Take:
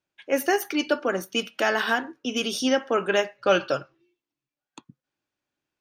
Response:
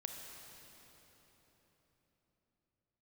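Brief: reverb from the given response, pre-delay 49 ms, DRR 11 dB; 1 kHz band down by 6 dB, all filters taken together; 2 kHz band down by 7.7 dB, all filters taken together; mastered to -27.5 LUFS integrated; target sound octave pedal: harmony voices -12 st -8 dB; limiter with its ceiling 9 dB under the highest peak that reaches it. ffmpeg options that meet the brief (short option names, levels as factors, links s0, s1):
-filter_complex "[0:a]equalizer=f=1000:t=o:g=-6.5,equalizer=f=2000:t=o:g=-8,alimiter=limit=0.0944:level=0:latency=1,asplit=2[s0][s1];[1:a]atrim=start_sample=2205,adelay=49[s2];[s1][s2]afir=irnorm=-1:irlink=0,volume=0.355[s3];[s0][s3]amix=inputs=2:normalize=0,asplit=2[s4][s5];[s5]asetrate=22050,aresample=44100,atempo=2,volume=0.398[s6];[s4][s6]amix=inputs=2:normalize=0,volume=1.41"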